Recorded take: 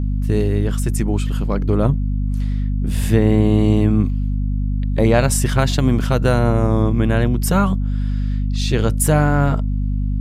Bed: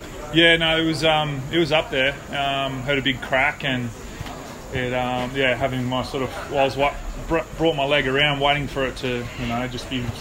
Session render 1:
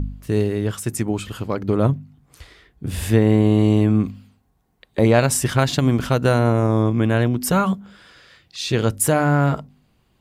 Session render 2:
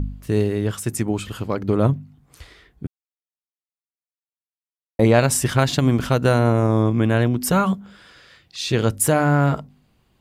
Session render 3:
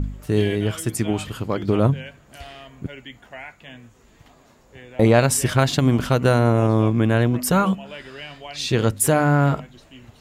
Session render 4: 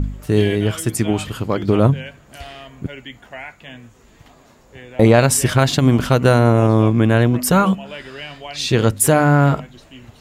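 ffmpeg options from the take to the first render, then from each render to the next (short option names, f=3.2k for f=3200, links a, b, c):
-af "bandreject=f=50:t=h:w=4,bandreject=f=100:t=h:w=4,bandreject=f=150:t=h:w=4,bandreject=f=200:t=h:w=4,bandreject=f=250:t=h:w=4"
-filter_complex "[0:a]asplit=3[a][b][c];[a]atrim=end=2.87,asetpts=PTS-STARTPTS,afade=t=out:st=2.866:d=0.004:c=hsin[d];[b]atrim=start=2.87:end=4.99,asetpts=PTS-STARTPTS,volume=0[e];[c]atrim=start=4.99,asetpts=PTS-STARTPTS,afade=t=in:d=0.004:c=hsin[f];[d][e][f]concat=n=3:v=0:a=1"
-filter_complex "[1:a]volume=-18.5dB[a];[0:a][a]amix=inputs=2:normalize=0"
-af "volume=4dB,alimiter=limit=-1dB:level=0:latency=1"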